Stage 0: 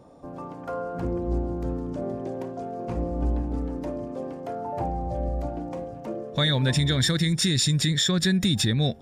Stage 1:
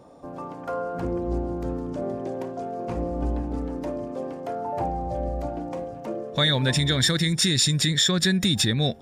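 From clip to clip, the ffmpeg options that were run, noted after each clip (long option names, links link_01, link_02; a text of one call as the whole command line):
ffmpeg -i in.wav -af "lowshelf=frequency=240:gain=-5.5,volume=3dB" out.wav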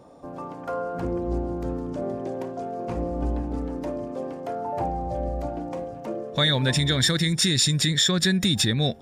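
ffmpeg -i in.wav -af anull out.wav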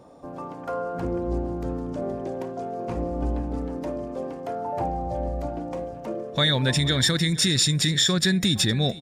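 ffmpeg -i in.wav -af "aecho=1:1:465:0.112" out.wav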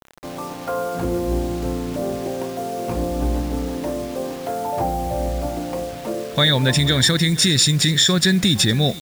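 ffmpeg -i in.wav -af "acrusher=bits=6:mix=0:aa=0.000001,volume=5dB" out.wav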